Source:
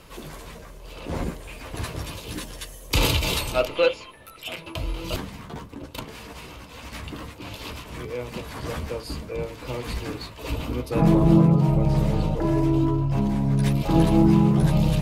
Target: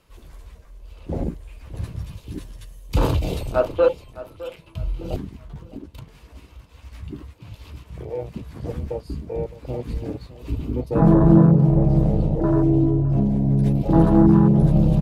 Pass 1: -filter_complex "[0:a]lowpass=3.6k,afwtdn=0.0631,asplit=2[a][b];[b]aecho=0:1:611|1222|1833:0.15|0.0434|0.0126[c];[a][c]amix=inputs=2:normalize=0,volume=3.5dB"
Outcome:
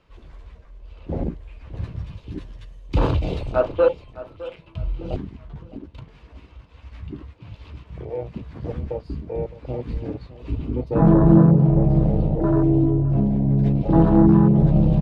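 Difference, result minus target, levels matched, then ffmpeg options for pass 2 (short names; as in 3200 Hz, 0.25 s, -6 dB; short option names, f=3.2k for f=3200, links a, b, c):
4000 Hz band -3.0 dB
-filter_complex "[0:a]afwtdn=0.0631,asplit=2[a][b];[b]aecho=0:1:611|1222|1833:0.15|0.0434|0.0126[c];[a][c]amix=inputs=2:normalize=0,volume=3.5dB"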